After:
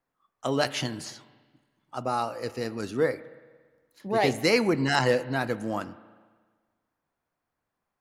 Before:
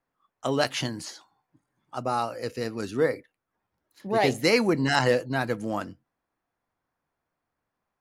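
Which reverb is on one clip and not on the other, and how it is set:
spring reverb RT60 1.5 s, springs 36/47 ms, chirp 50 ms, DRR 15 dB
level −1 dB

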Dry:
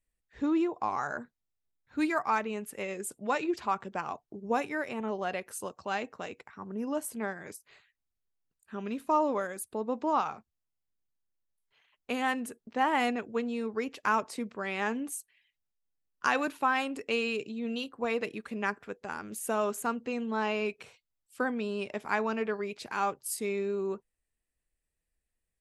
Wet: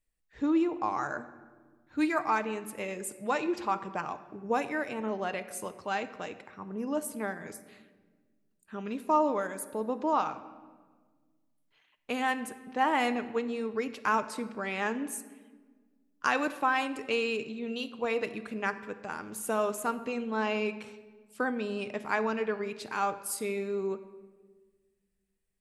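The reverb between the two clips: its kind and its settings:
rectangular room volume 1,500 cubic metres, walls mixed, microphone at 0.5 metres

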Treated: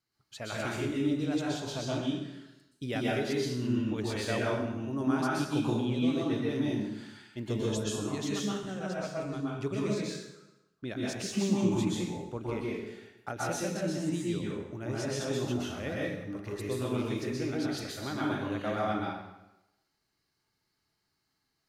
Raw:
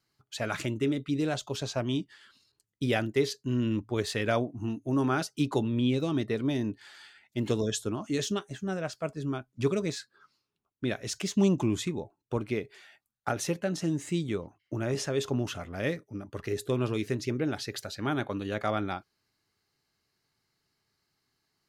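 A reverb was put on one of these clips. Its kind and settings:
dense smooth reverb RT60 0.93 s, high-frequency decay 0.85×, pre-delay 110 ms, DRR −5.5 dB
level −8 dB

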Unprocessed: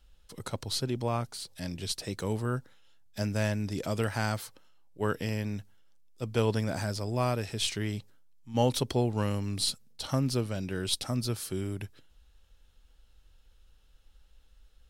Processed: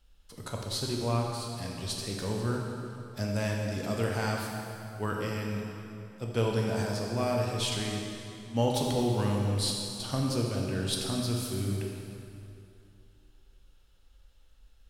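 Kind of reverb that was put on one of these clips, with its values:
dense smooth reverb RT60 2.7 s, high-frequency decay 0.8×, DRR −1 dB
level −3 dB

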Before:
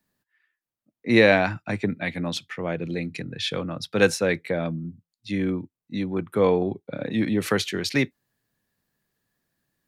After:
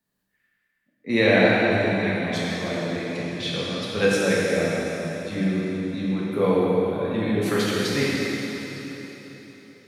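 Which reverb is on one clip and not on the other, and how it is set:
dense smooth reverb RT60 4 s, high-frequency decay 0.95×, DRR −7 dB
level −6 dB

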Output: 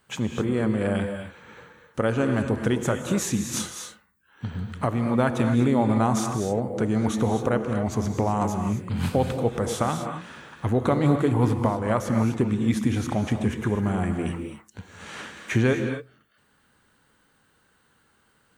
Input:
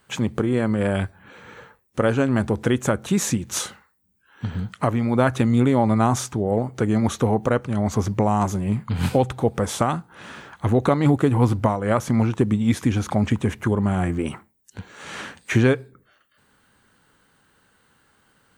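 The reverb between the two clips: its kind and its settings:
reverb whose tail is shaped and stops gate 280 ms rising, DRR 5.5 dB
level −4 dB

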